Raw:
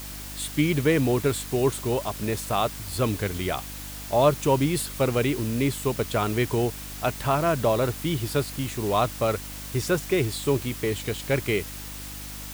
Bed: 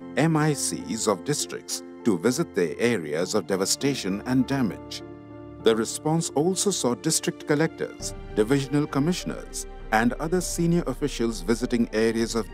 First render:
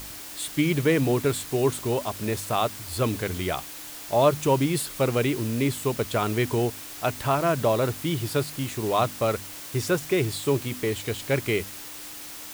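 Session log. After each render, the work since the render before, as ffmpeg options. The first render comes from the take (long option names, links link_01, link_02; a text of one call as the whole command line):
ffmpeg -i in.wav -af "bandreject=frequency=50:width_type=h:width=4,bandreject=frequency=100:width_type=h:width=4,bandreject=frequency=150:width_type=h:width=4,bandreject=frequency=200:width_type=h:width=4,bandreject=frequency=250:width_type=h:width=4" out.wav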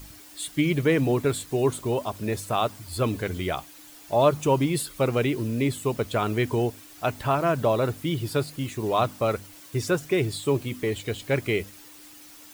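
ffmpeg -i in.wav -af "afftdn=noise_reduction=10:noise_floor=-40" out.wav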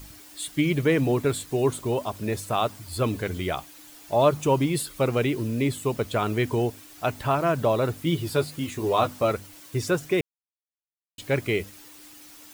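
ffmpeg -i in.wav -filter_complex "[0:a]asettb=1/sr,asplit=3[link_01][link_02][link_03];[link_01]atrim=end=8.054[link_04];[link_02]atrim=start=8.05:end=9.31,asetpts=PTS-STARTPTS,afade=type=in:duration=0.004:curve=qsin,afade=type=out:start_time=1.256:duration=0.004:curve=qsin,asplit=2[link_05][link_06];[link_06]adelay=12,volume=-5dB[link_07];[link_05][link_07]amix=inputs=2:normalize=0,atrim=end_sample=55566[link_08];[link_03]atrim=start=9.306[link_09];[link_04][link_08]acrossfade=duration=0.004:curve1=hsin:curve2=qsin[link_10];[link_10][link_09]acrossfade=duration=0.004:curve1=qsin:curve2=hsin,asplit=3[link_11][link_12][link_13];[link_11]atrim=end=10.21,asetpts=PTS-STARTPTS,afade=type=out:start_time=10.206:duration=0.004:curve=hsin[link_14];[link_12]atrim=start=10.21:end=11.18,asetpts=PTS-STARTPTS,volume=0[link_15];[link_13]atrim=start=11.18,asetpts=PTS-STARTPTS,afade=type=in:duration=0.004:curve=hsin[link_16];[link_14][link_15][link_16]concat=n=3:v=0:a=1" out.wav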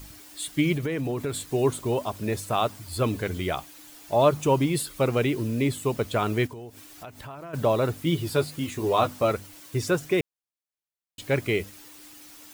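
ffmpeg -i in.wav -filter_complex "[0:a]asettb=1/sr,asplit=3[link_01][link_02][link_03];[link_01]atrim=end=0.754[link_04];[link_02]atrim=start=0.75:end=1.47,asetpts=PTS-STARTPTS,afade=type=in:duration=0.004:curve=qsin,afade=type=out:start_time=0.716:duration=0.004:curve=qsin,acompressor=threshold=-25dB:ratio=6:attack=3.2:release=140:knee=1:detection=peak[link_05];[link_03]atrim=start=1.466[link_06];[link_04][link_05]acrossfade=duration=0.004:curve1=hsin:curve2=qsin[link_07];[link_07][link_06]acrossfade=duration=0.004:curve1=qsin:curve2=hsin,asplit=3[link_08][link_09][link_10];[link_08]afade=type=out:start_time=6.46:duration=0.02[link_11];[link_09]acompressor=threshold=-39dB:ratio=5:attack=3.2:release=140:knee=1:detection=peak,afade=type=in:start_time=6.46:duration=0.02,afade=type=out:start_time=7.53:duration=0.02[link_12];[link_10]afade=type=in:start_time=7.53:duration=0.02[link_13];[link_11][link_12][link_13]amix=inputs=3:normalize=0" out.wav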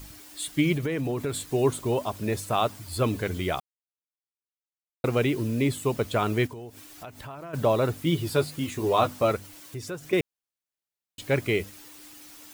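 ffmpeg -i in.wav -filter_complex "[0:a]asettb=1/sr,asplit=3[link_01][link_02][link_03];[link_01]atrim=end=9.364[link_04];[link_02]atrim=start=9.36:end=10.13,asetpts=PTS-STARTPTS,afade=type=in:duration=0.004:curve=qsin,afade=type=out:start_time=0.766:duration=0.004:curve=qsin,acompressor=threshold=-40dB:ratio=2:attack=3.2:release=140:knee=1:detection=peak[link_05];[link_03]atrim=start=10.126[link_06];[link_04][link_05]acrossfade=duration=0.004:curve1=hsin:curve2=qsin[link_07];[link_07][link_06]acrossfade=duration=0.004:curve1=qsin:curve2=hsin,asplit=3[link_08][link_09][link_10];[link_08]atrim=end=3.6,asetpts=PTS-STARTPTS,afade=type=out:start_time=3.596:duration=0.004:curve=hsin[link_11];[link_09]atrim=start=3.6:end=5.04,asetpts=PTS-STARTPTS,volume=0[link_12];[link_10]atrim=start=5.04,asetpts=PTS-STARTPTS,afade=type=in:duration=0.004:curve=hsin[link_13];[link_11][link_12][link_13]concat=n=3:v=0:a=1" out.wav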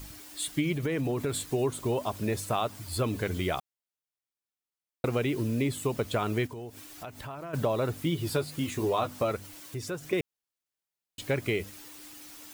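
ffmpeg -i in.wav -af "acompressor=threshold=-25dB:ratio=4" out.wav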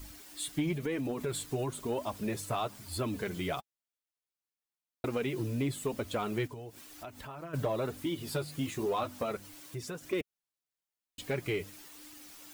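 ffmpeg -i in.wav -af "flanger=delay=2.9:depth=4.4:regen=-25:speed=0.99:shape=triangular,asoftclip=type=tanh:threshold=-21.5dB" out.wav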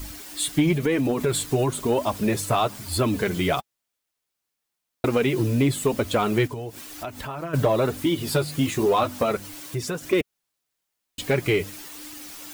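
ffmpeg -i in.wav -af "volume=11.5dB" out.wav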